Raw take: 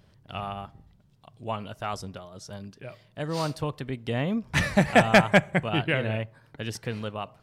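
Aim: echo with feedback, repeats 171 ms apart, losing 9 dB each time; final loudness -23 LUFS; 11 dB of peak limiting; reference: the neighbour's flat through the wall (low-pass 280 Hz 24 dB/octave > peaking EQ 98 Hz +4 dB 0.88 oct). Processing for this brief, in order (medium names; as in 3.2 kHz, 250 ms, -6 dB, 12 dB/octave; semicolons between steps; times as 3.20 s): peak limiter -18.5 dBFS; low-pass 280 Hz 24 dB/octave; peaking EQ 98 Hz +4 dB 0.88 oct; feedback delay 171 ms, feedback 35%, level -9 dB; trim +10.5 dB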